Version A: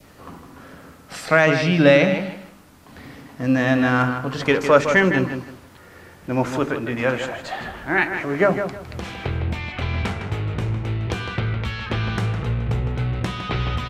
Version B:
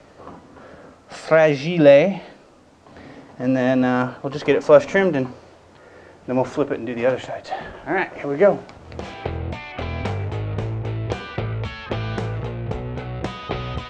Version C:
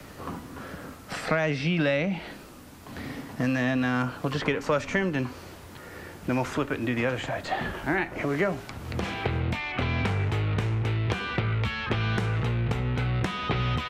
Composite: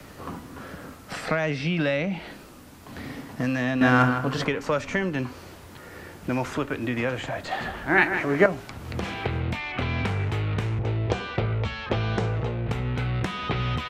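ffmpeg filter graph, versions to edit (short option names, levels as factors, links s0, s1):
-filter_complex "[0:a]asplit=2[s0][s1];[2:a]asplit=4[s2][s3][s4][s5];[s2]atrim=end=3.812[s6];[s0]atrim=start=3.808:end=4.452[s7];[s3]atrim=start=4.448:end=7.512[s8];[s1]atrim=start=7.508:end=8.462[s9];[s4]atrim=start=8.458:end=10.792[s10];[1:a]atrim=start=10.788:end=12.682[s11];[s5]atrim=start=12.678[s12];[s6][s7]acrossfade=d=0.004:c1=hsin:c2=hsin[s13];[s13][s8]acrossfade=d=0.004:c1=hsin:c2=hsin[s14];[s14][s9]acrossfade=d=0.004:c1=hsin:c2=hsin[s15];[s15][s10]acrossfade=d=0.004:c1=hsin:c2=hsin[s16];[s16][s11]acrossfade=d=0.004:c1=hsin:c2=hsin[s17];[s17][s12]acrossfade=d=0.004:c1=hsin:c2=hsin"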